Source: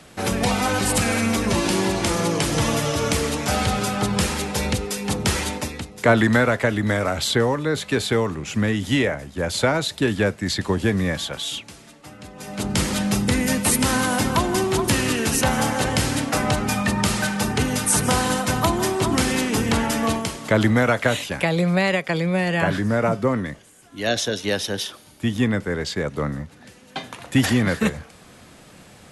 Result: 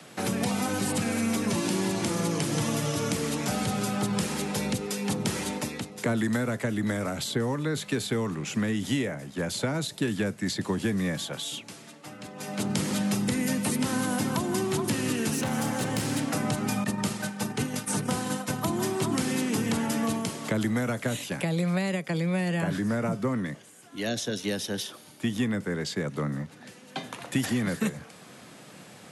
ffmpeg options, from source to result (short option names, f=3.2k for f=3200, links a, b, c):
-filter_complex "[0:a]asettb=1/sr,asplit=3[a][b][c];[a]atrim=end=15.334[d];[b]atrim=start=15.33:end=16.25,asetpts=PTS-STARTPTS,afade=t=in:d=0.004:c=qsin,afade=t=out:st=0.916:d=0.004:c=qsin,asoftclip=type=hard:threshold=-17.5dB[e];[c]atrim=start=16.246[f];[d][e]acrossfade=d=0.004:c1=hsin:c2=qsin[g];[g][f]acrossfade=d=0.004:c1=qsin:c2=hsin,asettb=1/sr,asplit=3[h][i][j];[h]atrim=end=16.844[k];[i]atrim=start=16.84:end=18.68,asetpts=PTS-STARTPTS,afade=t=in:d=0.004:c=qsin,afade=t=out:st=1.836:d=0.004:c=qsin,agate=range=-33dB:threshold=-18dB:ratio=3:release=100:detection=peak[l];[j]atrim=start=18.676[m];[k][l]acrossfade=d=0.004:c1=hsin:c2=qsin[n];[n][m]acrossfade=d=0.004:c1=qsin:c2=hsin,highpass=f=120:w=0.5412,highpass=f=120:w=1.3066,acrossover=split=320|770|6300[o][p][q][r];[o]acompressor=threshold=-25dB:ratio=4[s];[p]acompressor=threshold=-37dB:ratio=4[t];[q]acompressor=threshold=-35dB:ratio=4[u];[r]acompressor=threshold=-36dB:ratio=4[v];[s][t][u][v]amix=inputs=4:normalize=0,volume=-1dB"